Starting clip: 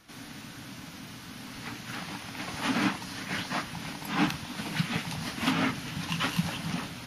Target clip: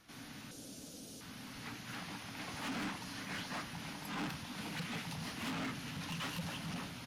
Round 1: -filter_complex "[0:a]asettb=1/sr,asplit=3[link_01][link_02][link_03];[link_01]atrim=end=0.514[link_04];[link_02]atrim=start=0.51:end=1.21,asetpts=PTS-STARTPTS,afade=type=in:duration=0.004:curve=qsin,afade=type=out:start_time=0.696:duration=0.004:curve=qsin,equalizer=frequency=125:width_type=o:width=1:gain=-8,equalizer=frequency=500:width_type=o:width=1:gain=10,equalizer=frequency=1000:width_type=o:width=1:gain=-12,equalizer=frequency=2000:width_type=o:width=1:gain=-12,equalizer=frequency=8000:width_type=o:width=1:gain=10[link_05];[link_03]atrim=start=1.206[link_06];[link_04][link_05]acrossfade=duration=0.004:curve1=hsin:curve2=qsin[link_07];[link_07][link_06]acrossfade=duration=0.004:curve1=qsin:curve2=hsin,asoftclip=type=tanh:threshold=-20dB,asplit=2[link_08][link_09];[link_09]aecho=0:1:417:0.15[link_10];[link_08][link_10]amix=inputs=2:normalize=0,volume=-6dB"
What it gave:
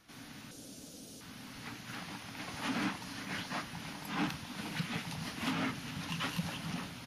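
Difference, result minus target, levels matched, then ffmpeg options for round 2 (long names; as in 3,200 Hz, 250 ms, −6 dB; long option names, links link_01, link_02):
soft clipping: distortion −10 dB
-filter_complex "[0:a]asettb=1/sr,asplit=3[link_01][link_02][link_03];[link_01]atrim=end=0.514[link_04];[link_02]atrim=start=0.51:end=1.21,asetpts=PTS-STARTPTS,afade=type=in:duration=0.004:curve=qsin,afade=type=out:start_time=0.696:duration=0.004:curve=qsin,equalizer=frequency=125:width_type=o:width=1:gain=-8,equalizer=frequency=500:width_type=o:width=1:gain=10,equalizer=frequency=1000:width_type=o:width=1:gain=-12,equalizer=frequency=2000:width_type=o:width=1:gain=-12,equalizer=frequency=8000:width_type=o:width=1:gain=10[link_05];[link_03]atrim=start=1.206[link_06];[link_04][link_05]acrossfade=duration=0.004:curve1=hsin:curve2=qsin[link_07];[link_07][link_06]acrossfade=duration=0.004:curve1=qsin:curve2=hsin,asoftclip=type=tanh:threshold=-30.5dB,asplit=2[link_08][link_09];[link_09]aecho=0:1:417:0.15[link_10];[link_08][link_10]amix=inputs=2:normalize=0,volume=-6dB"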